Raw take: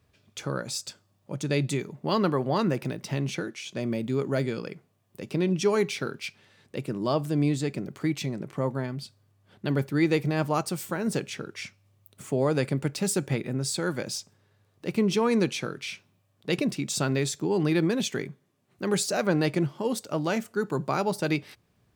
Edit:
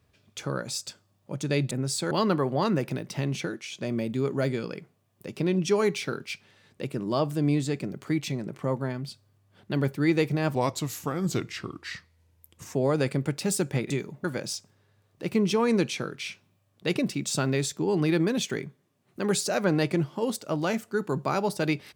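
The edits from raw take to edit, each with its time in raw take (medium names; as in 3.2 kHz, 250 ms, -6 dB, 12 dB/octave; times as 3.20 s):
1.71–2.05 s: swap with 13.47–13.87 s
10.49–12.31 s: speed 83%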